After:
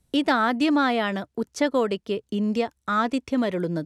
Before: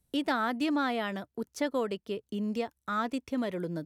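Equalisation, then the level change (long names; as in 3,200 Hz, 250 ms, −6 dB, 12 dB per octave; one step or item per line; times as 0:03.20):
low-pass filter 9,100 Hz 12 dB per octave
+8.0 dB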